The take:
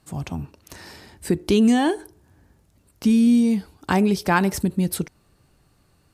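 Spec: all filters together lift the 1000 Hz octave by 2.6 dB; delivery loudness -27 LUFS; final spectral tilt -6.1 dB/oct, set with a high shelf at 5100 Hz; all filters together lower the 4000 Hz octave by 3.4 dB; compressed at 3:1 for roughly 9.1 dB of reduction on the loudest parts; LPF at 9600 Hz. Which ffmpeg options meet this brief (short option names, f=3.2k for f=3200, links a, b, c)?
-af "lowpass=9.6k,equalizer=f=1k:t=o:g=3.5,equalizer=f=4k:t=o:g=-3.5,highshelf=f=5.1k:g=-3,acompressor=threshold=-26dB:ratio=3,volume=2dB"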